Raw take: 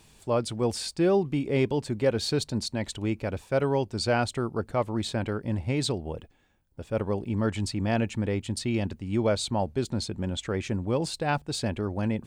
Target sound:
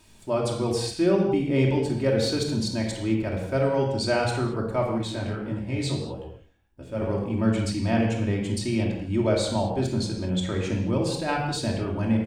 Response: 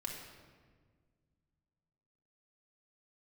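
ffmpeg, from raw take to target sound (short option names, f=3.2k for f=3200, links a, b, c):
-filter_complex "[0:a]asplit=2[a][b];[b]adelay=169.1,volume=-24dB,highshelf=f=4k:g=-3.8[c];[a][c]amix=inputs=2:normalize=0[d];[1:a]atrim=start_sample=2205,afade=t=out:st=0.31:d=0.01,atrim=end_sample=14112,asetrate=48510,aresample=44100[e];[d][e]afir=irnorm=-1:irlink=0,asettb=1/sr,asplit=3[f][g][h];[f]atrim=end=4.984[i];[g]atrim=start=4.98:end=7.02,asetpts=PTS-STARTPTS,afade=t=in:d=0.004:c=qsin,afade=t=out:st=2.036:d=0.004:c=qsin,flanger=delay=15:depth=6.4:speed=1.6[j];[h]atrim=start=7.016[k];[i][j]acrossfade=d=0.004:c1=hsin:c2=qsin[l];[l][k]acrossfade=d=0.004:c1=qsin:c2=hsin,volume=3.5dB"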